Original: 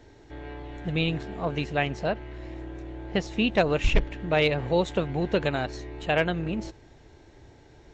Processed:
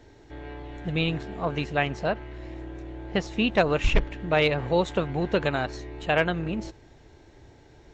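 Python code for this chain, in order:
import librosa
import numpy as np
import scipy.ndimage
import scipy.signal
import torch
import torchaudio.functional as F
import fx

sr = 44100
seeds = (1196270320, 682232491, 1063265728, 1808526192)

y = fx.dynamic_eq(x, sr, hz=1200.0, q=1.4, threshold_db=-40.0, ratio=4.0, max_db=4)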